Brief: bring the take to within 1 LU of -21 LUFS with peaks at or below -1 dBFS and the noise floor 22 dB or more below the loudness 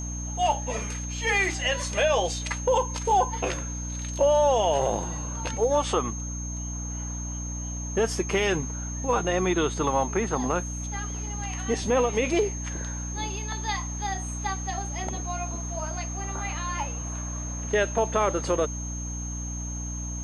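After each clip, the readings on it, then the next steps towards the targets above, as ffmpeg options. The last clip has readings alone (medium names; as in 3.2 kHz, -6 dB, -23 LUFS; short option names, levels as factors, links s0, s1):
hum 60 Hz; highest harmonic 300 Hz; hum level -31 dBFS; steady tone 6.4 kHz; tone level -36 dBFS; loudness -27.5 LUFS; peak level -11.5 dBFS; loudness target -21.0 LUFS
-> -af "bandreject=f=60:t=h:w=6,bandreject=f=120:t=h:w=6,bandreject=f=180:t=h:w=6,bandreject=f=240:t=h:w=6,bandreject=f=300:t=h:w=6"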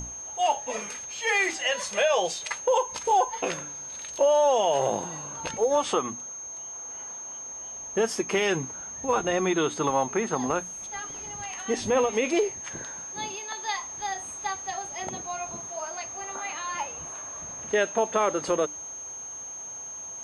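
hum not found; steady tone 6.4 kHz; tone level -36 dBFS
-> -af "bandreject=f=6400:w=30"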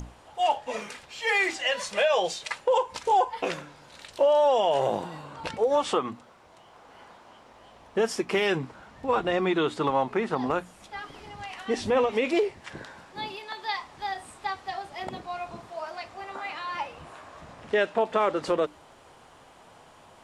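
steady tone not found; loudness -27.5 LUFS; peak level -13.5 dBFS; loudness target -21.0 LUFS
-> -af "volume=2.11"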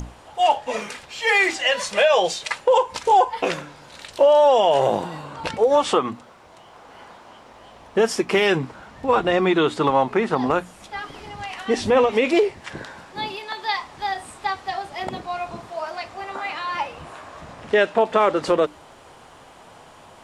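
loudness -21.0 LUFS; peak level -7.0 dBFS; noise floor -47 dBFS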